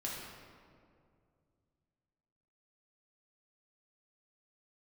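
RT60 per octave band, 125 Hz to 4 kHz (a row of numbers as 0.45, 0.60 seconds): 3.3, 2.8, 2.5, 2.0, 1.6, 1.2 seconds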